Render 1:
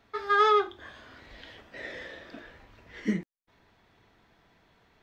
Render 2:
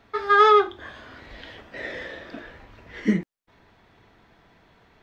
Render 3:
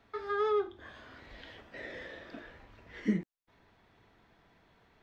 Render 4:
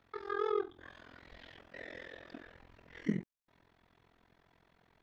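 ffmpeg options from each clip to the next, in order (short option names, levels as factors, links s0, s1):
-af "highshelf=f=4000:g=-5.5,volume=2.24"
-filter_complex "[0:a]acrossover=split=490[s0][s1];[s1]acompressor=threshold=0.0158:ratio=2[s2];[s0][s2]amix=inputs=2:normalize=0,volume=0.398"
-af "tremolo=f=43:d=0.947"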